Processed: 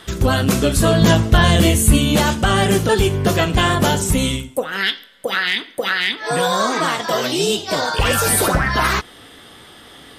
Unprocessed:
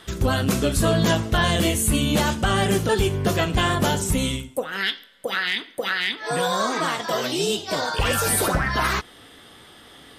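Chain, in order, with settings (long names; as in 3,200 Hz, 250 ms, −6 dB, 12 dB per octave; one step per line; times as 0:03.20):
0:01.01–0:01.98: low-shelf EQ 180 Hz +6.5 dB
level +5 dB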